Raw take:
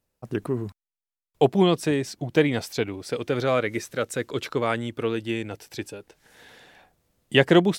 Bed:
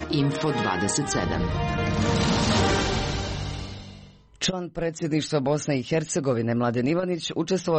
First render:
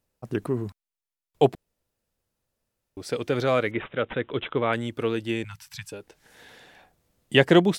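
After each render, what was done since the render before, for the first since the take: 1.55–2.97 room tone; 3.71–4.73 careless resampling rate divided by 6×, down none, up filtered; 5.44–5.92 elliptic band-stop 160–1000 Hz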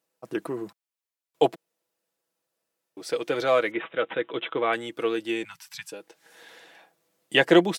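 HPF 310 Hz 12 dB/oct; comb 6.1 ms, depth 48%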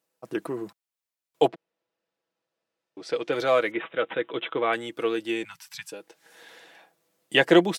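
1.47–3.31 LPF 3300 Hz -> 5500 Hz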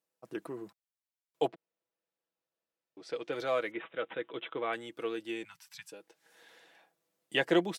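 gain -9.5 dB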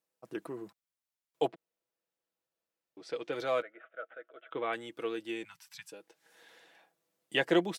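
3.62–4.51 double band-pass 950 Hz, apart 1.1 oct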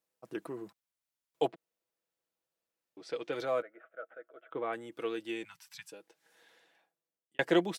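3.45–4.92 bell 3500 Hz -10 dB 1.8 oct; 5.79–7.39 fade out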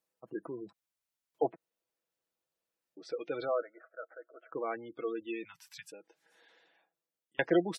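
spectral gate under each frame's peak -20 dB strong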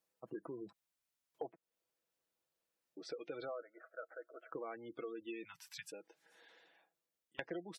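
compressor 6:1, threshold -42 dBFS, peak gain reduction 19 dB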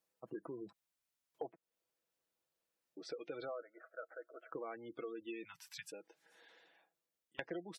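nothing audible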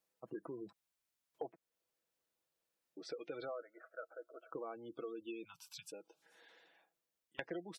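4.08–6.22 Butterworth band-stop 1900 Hz, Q 1.7

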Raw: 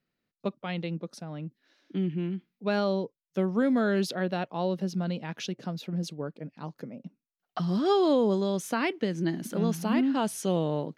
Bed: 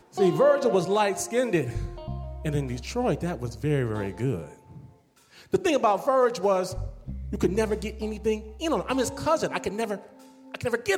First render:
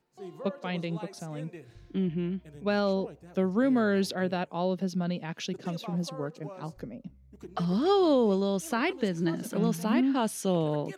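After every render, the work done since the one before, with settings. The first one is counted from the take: add bed -21.5 dB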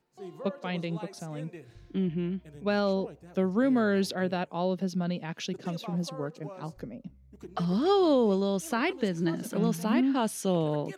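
nothing audible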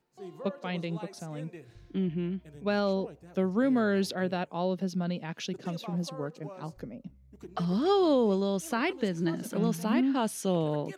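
gain -1 dB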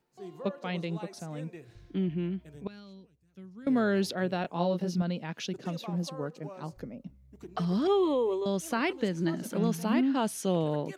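2.67–3.67 passive tone stack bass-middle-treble 6-0-2; 4.42–5.02 doubler 23 ms -2.5 dB; 7.87–8.46 fixed phaser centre 1000 Hz, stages 8

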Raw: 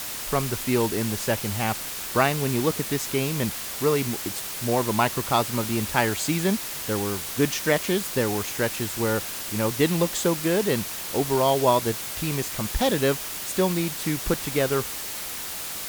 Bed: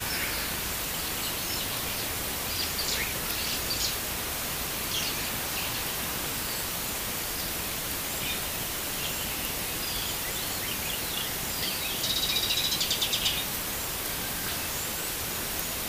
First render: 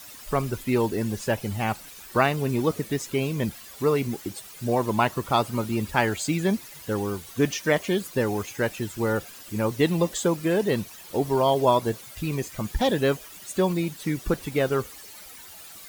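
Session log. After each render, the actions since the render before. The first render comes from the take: denoiser 14 dB, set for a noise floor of -33 dBFS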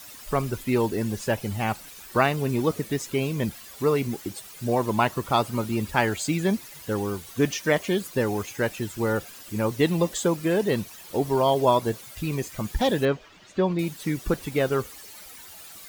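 13.05–13.79 air absorption 190 m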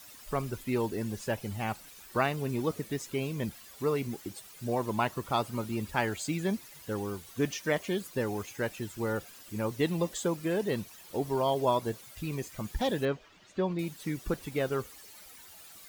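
gain -7 dB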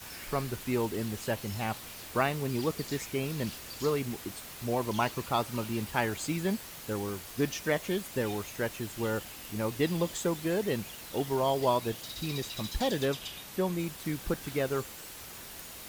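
add bed -14.5 dB

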